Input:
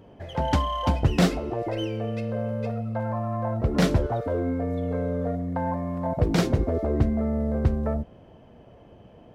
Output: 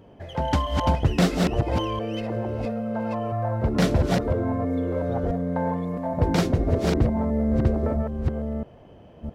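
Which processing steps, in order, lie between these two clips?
chunks repeated in reverse 664 ms, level -3 dB

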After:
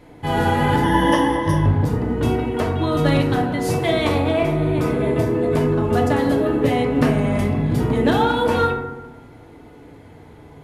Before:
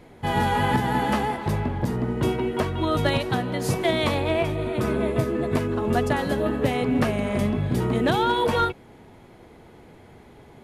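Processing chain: 0.83–1.66 s: rippled EQ curve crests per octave 1.2, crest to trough 18 dB; FDN reverb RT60 1.1 s, low-frequency decay 1.4×, high-frequency decay 0.35×, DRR 0 dB

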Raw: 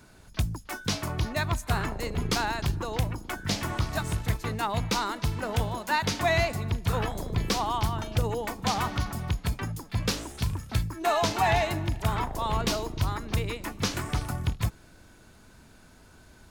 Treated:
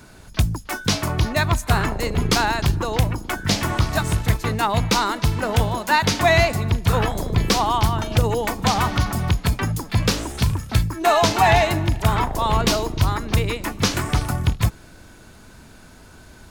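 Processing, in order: 8.10–10.53 s: three bands compressed up and down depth 40%; trim +8.5 dB

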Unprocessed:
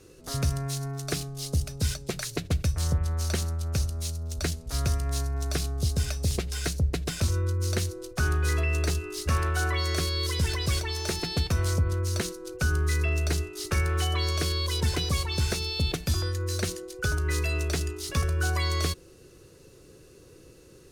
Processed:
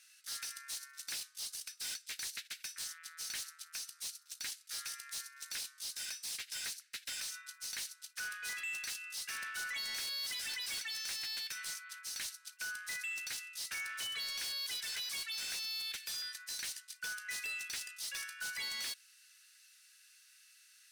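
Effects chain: steep high-pass 1.5 kHz 48 dB/octave; band-stop 6.8 kHz, Q 17; saturation -35.5 dBFS, distortion -10 dB; trim -1 dB

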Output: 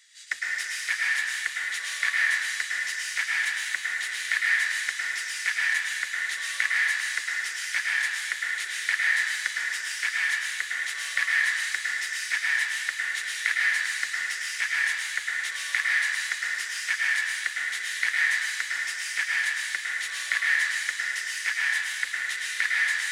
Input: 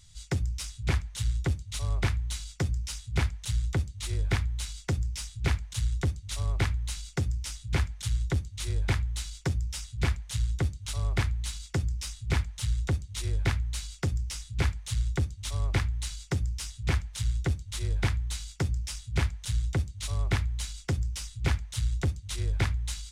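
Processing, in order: saturation -18 dBFS, distortion -22 dB; resonant high-pass 1.8 kHz, resonance Q 8.2; plate-style reverb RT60 2.1 s, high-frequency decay 0.9×, pre-delay 95 ms, DRR -5.5 dB

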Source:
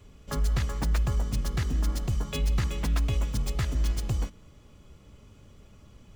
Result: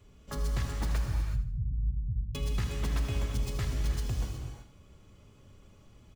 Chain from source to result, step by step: 1.06–2.35 s: inverse Chebyshev low-pass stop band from 560 Hz, stop band 60 dB; feedback delay 79 ms, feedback 37%, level -12 dB; gated-style reverb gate 400 ms flat, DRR 1.5 dB; trim -6 dB

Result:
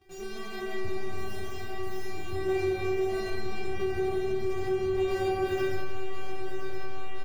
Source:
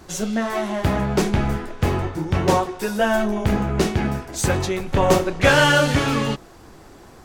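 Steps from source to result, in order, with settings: median filter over 41 samples; 0.98–2.17 s: differentiator; reverberation RT60 3.4 s, pre-delay 60 ms, DRR -4 dB; in parallel at -9 dB: fuzz box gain 30 dB, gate -37 dBFS; on the sum: inharmonic resonator 380 Hz, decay 0.77 s, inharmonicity 0.002; on a send: delay 1017 ms -6.5 dB; on the sum: compression, threshold -30 dBFS, peak gain reduction 12 dB; fifteen-band graphic EQ 100 Hz +12 dB, 2.5 kHz +5 dB, 10 kHz -4 dB; tape noise reduction on one side only encoder only; trim +6 dB

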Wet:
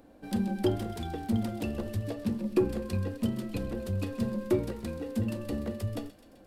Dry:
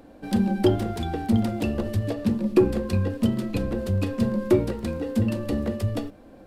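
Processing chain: treble shelf 8.8 kHz +5.5 dB; feedback echo behind a high-pass 129 ms, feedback 69%, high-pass 2 kHz, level -13.5 dB; trim -7.5 dB

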